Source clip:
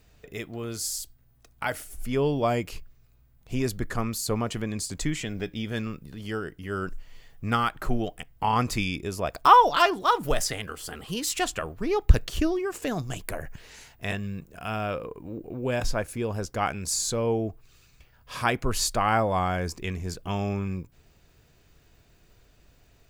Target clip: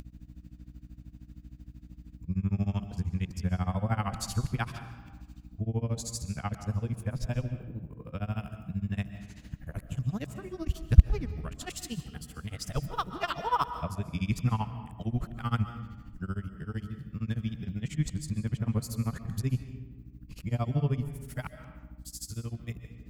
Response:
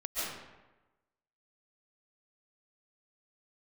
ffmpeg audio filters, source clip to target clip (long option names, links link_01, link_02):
-filter_complex "[0:a]areverse,highpass=44,lowshelf=frequency=240:width_type=q:width=1.5:gain=12,aeval=exprs='val(0)+0.0141*(sin(2*PI*60*n/s)+sin(2*PI*2*60*n/s)/2+sin(2*PI*3*60*n/s)/3+sin(2*PI*4*60*n/s)/4+sin(2*PI*5*60*n/s)/5)':channel_layout=same,tremolo=f=13:d=0.96,asplit=2[link_01][link_02];[1:a]atrim=start_sample=2205[link_03];[link_02][link_03]afir=irnorm=-1:irlink=0,volume=-14dB[link_04];[link_01][link_04]amix=inputs=2:normalize=0,acompressor=mode=upward:threshold=-32dB:ratio=2.5,volume=-8.5dB"